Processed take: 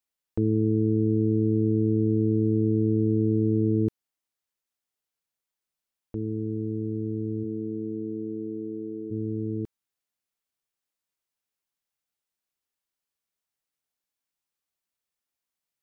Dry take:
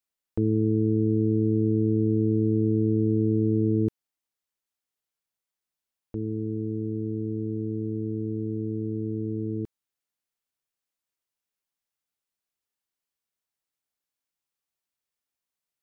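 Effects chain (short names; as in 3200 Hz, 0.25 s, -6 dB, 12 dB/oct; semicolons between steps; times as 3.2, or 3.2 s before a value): 7.43–9.1 HPF 140 Hz -> 340 Hz 12 dB/oct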